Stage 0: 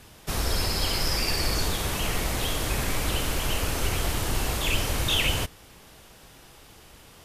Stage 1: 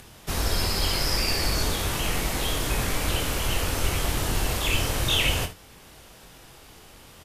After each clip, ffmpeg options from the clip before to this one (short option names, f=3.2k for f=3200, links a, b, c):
-filter_complex "[0:a]acompressor=mode=upward:threshold=-46dB:ratio=2.5,asplit=2[a][b];[b]aecho=0:1:23|57|75:0.473|0.211|0.168[c];[a][c]amix=inputs=2:normalize=0"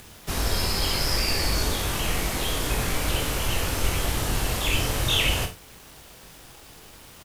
-filter_complex "[0:a]acrusher=bits=7:mix=0:aa=0.000001,asplit=2[a][b];[b]adelay=41,volume=-10.5dB[c];[a][c]amix=inputs=2:normalize=0"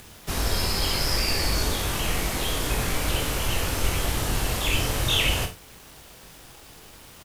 -af anull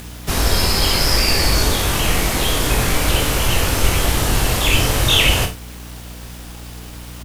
-af "aeval=exprs='val(0)+0.00794*(sin(2*PI*60*n/s)+sin(2*PI*2*60*n/s)/2+sin(2*PI*3*60*n/s)/3+sin(2*PI*4*60*n/s)/4+sin(2*PI*5*60*n/s)/5)':c=same,volume=8.5dB"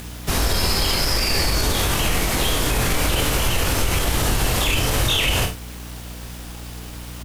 -af "alimiter=level_in=8.5dB:limit=-1dB:release=50:level=0:latency=1,volume=-9dB"